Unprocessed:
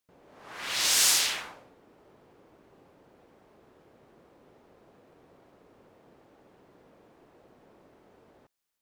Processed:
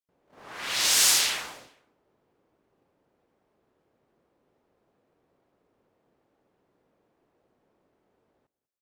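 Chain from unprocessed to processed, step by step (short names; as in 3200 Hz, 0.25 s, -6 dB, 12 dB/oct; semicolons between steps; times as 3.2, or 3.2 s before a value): gate -54 dBFS, range -15 dB; on a send: feedback echo 0.195 s, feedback 25%, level -19.5 dB; on the sum: gain +2 dB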